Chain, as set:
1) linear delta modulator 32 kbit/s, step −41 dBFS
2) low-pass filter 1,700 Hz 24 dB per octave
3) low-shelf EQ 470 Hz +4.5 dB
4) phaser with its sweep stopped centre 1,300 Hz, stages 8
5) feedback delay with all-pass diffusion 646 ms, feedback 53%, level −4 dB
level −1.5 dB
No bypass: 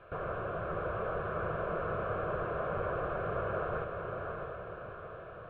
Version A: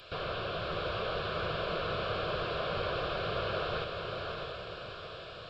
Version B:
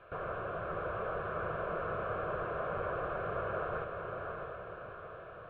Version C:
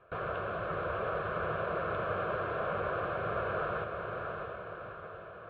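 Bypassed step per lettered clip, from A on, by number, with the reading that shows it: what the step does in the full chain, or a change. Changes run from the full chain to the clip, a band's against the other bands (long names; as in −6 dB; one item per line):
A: 2, 2 kHz band +3.0 dB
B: 3, 125 Hz band −3.0 dB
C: 1, 2 kHz band +3.5 dB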